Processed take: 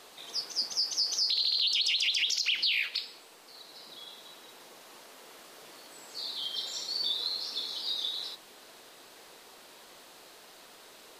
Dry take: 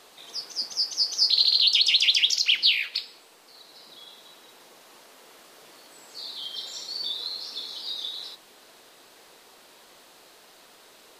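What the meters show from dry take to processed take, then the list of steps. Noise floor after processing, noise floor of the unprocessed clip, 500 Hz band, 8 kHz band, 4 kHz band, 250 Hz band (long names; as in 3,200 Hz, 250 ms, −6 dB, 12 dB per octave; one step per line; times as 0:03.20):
−54 dBFS, −54 dBFS, −0.5 dB, −2.5 dB, −6.0 dB, −0.5 dB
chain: brickwall limiter −20 dBFS, peak gain reduction 11 dB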